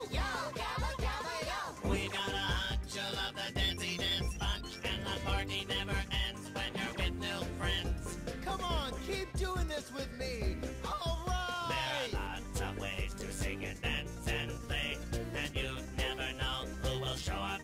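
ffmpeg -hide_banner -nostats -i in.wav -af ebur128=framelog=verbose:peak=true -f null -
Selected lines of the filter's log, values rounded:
Integrated loudness:
  I:         -36.6 LUFS
  Threshold: -46.6 LUFS
Loudness range:
  LRA:         2.5 LU
  Threshold: -56.6 LUFS
  LRA low:   -37.6 LUFS
  LRA high:  -35.2 LUFS
True peak:
  Peak:      -20.8 dBFS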